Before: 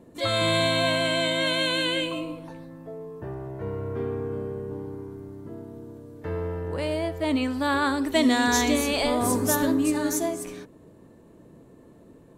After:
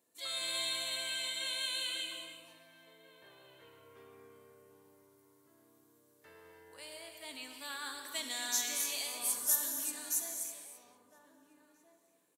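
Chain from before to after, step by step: differentiator; echo from a far wall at 280 m, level -12 dB; gated-style reverb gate 360 ms flat, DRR 4 dB; trim -4.5 dB

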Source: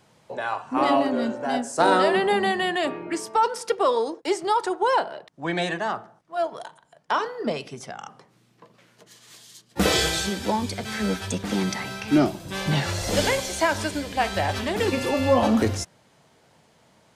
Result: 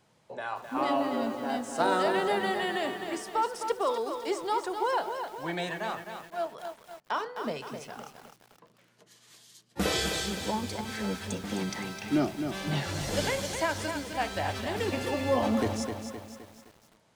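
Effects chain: bit-crushed delay 259 ms, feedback 55%, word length 7-bit, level -7 dB; trim -7.5 dB

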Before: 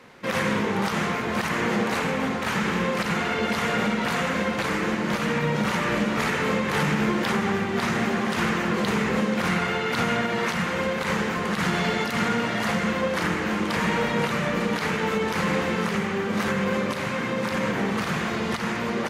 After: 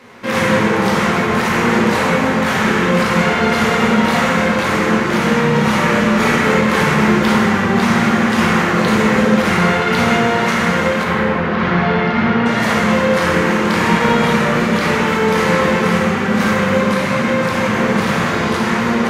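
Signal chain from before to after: 11.03–12.46 s: distance through air 280 m; plate-style reverb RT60 1.8 s, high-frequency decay 0.6×, DRR -3.5 dB; trim +5 dB

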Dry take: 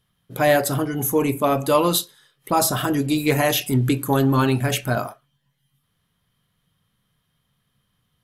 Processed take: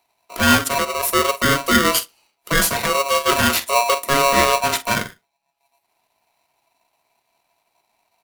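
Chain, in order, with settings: transient shaper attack -2 dB, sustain -8 dB; doubling 46 ms -13.5 dB; polarity switched at an audio rate 830 Hz; trim +2.5 dB

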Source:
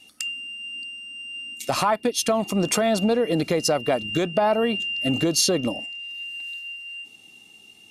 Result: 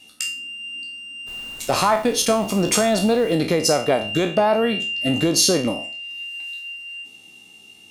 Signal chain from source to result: spectral sustain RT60 0.38 s; 1.26–3.35 s: added noise pink -47 dBFS; 6.26–6.75 s: steep high-pass 270 Hz; trim +2 dB

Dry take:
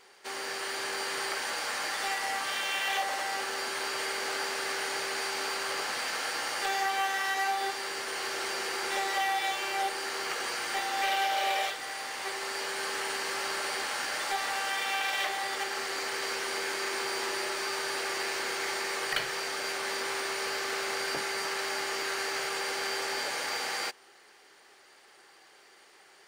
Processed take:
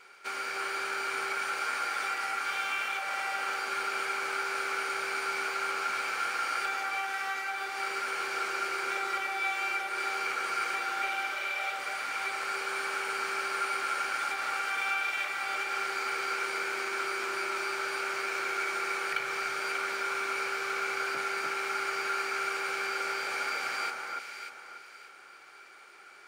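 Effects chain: compression, threshold -34 dBFS, peak gain reduction 9 dB; small resonant body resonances 1.4/2.3 kHz, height 17 dB, ringing for 25 ms; on a send: echo whose repeats swap between lows and highs 294 ms, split 1.7 kHz, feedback 55%, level -2 dB; on the sum: trim -3 dB

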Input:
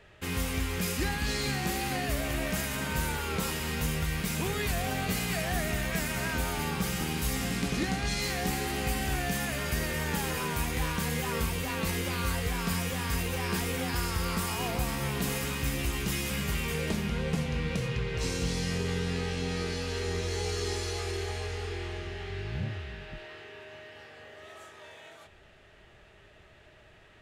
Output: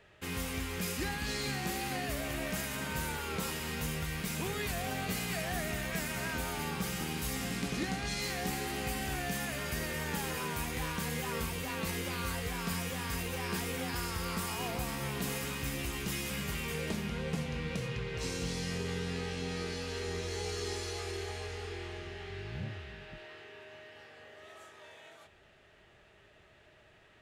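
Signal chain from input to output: bass shelf 65 Hz -8.5 dB; trim -4 dB

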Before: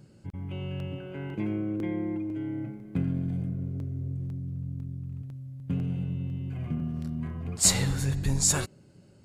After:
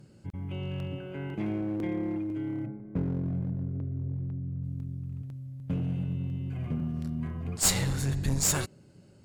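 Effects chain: 2.65–4.62 s: low-pass 1.3 kHz -> 2.1 kHz 12 dB/octave; one-sided clip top -27.5 dBFS

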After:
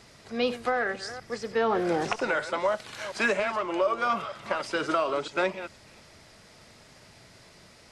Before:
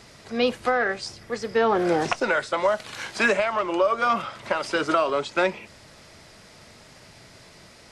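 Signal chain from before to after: chunks repeated in reverse 240 ms, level -12.5 dB; trim -4.5 dB

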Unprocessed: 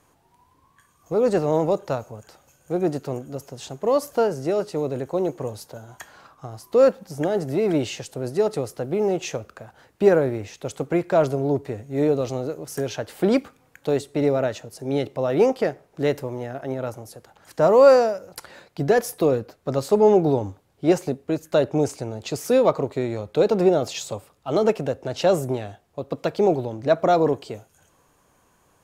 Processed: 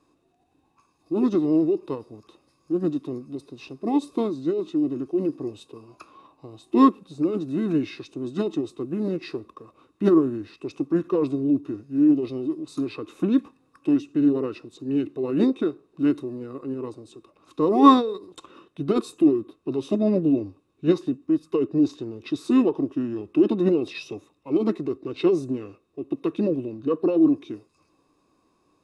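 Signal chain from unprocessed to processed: formant shift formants -5 st; small resonant body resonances 310/1100/2600/3700 Hz, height 16 dB, ringing for 25 ms; trim -12 dB

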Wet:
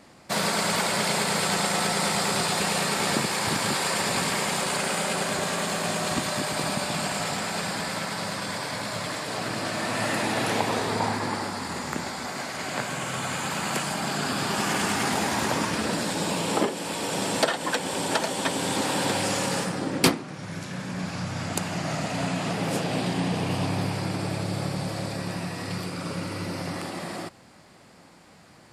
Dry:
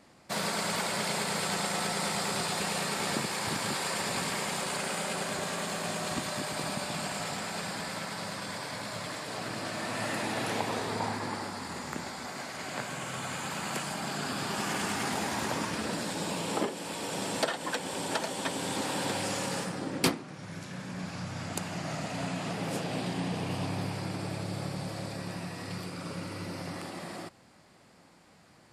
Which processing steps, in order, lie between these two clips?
trim +6.5 dB

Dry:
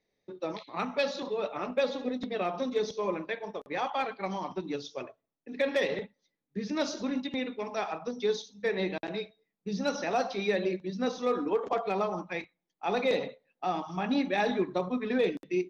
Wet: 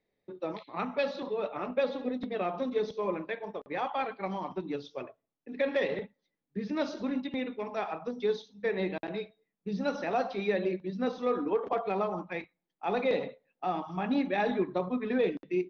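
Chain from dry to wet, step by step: distance through air 210 m

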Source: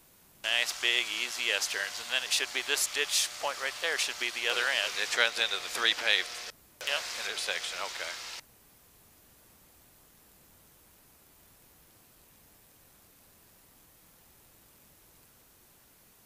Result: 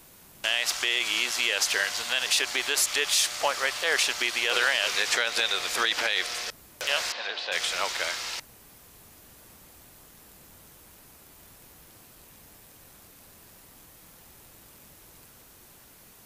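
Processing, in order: peak limiter -20 dBFS, peak gain reduction 11 dB; 7.12–7.52 s: cabinet simulation 330–3900 Hz, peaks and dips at 410 Hz -7 dB, 1.3 kHz -8 dB, 2.2 kHz -9 dB, 3.3 kHz -4 dB; trim +7.5 dB

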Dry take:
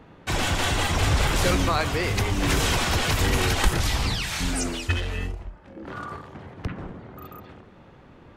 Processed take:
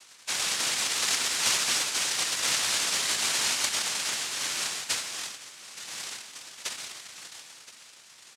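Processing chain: noise-vocoded speech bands 1; tilt shelf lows -5 dB, about 910 Hz; delay 1021 ms -16.5 dB; trim -7 dB

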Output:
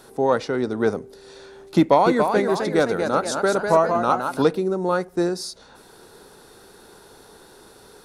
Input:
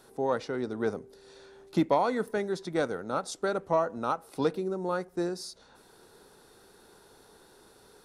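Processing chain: 1.77–4.42 s: ever faster or slower copies 292 ms, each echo +1 st, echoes 2, each echo -6 dB; trim +9 dB

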